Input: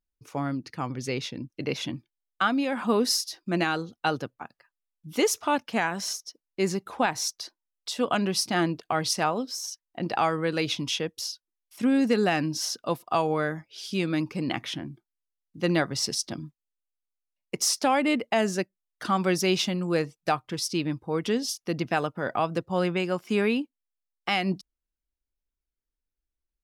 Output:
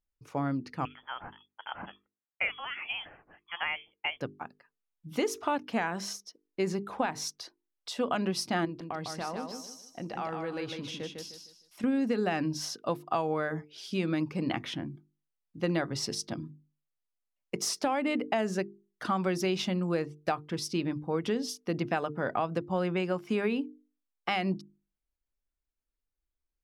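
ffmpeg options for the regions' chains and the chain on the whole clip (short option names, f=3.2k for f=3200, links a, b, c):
-filter_complex "[0:a]asettb=1/sr,asplit=3[a][b][c];[a]atrim=end=0.854[d];[b]atrim=start=0.85:end=4.21,asetpts=PTS-STARTPTS,afade=t=in:d=0.004:c=qsin,afade=t=out:st=3.356:d=0.004:c=qsin,highpass=960,lowpass=f=3.1k:t=q:w=0.5098,lowpass=f=3.1k:t=q:w=0.6013,lowpass=f=3.1k:t=q:w=0.9,lowpass=f=3.1k:t=q:w=2.563,afreqshift=-3600[e];[c]atrim=start=4.206[f];[d][e]acrossfade=d=0.004:c1=hsin:c2=qsin[g];[g][f]acrossfade=d=0.004:c1=qsin:c2=hsin,asettb=1/sr,asplit=3[h][i][j];[h]atrim=end=8.654[k];[i]atrim=start=8.65:end=11.84,asetpts=PTS-STARTPTS,afade=t=in:d=0.004:c=qsin,afade=t=out:st=3.186:d=0.004:c=qsin,acompressor=threshold=-39dB:ratio=2:attack=3.2:release=140:knee=1:detection=peak,aecho=1:1:153|306|459|612:0.562|0.174|0.054|0.0168,atrim=end_sample=140679[l];[j]atrim=start=11.836[m];[k][l]acrossfade=d=0.004:c1=hsin:c2=qsin[n];[n][m]acrossfade=d=0.004:c1=qsin:c2=hsin,highshelf=f=3.3k:g=-9,bandreject=f=50:t=h:w=6,bandreject=f=100:t=h:w=6,bandreject=f=150:t=h:w=6,bandreject=f=200:t=h:w=6,bandreject=f=250:t=h:w=6,bandreject=f=300:t=h:w=6,bandreject=f=350:t=h:w=6,bandreject=f=400:t=h:w=6,bandreject=f=450:t=h:w=6,acompressor=threshold=-25dB:ratio=6"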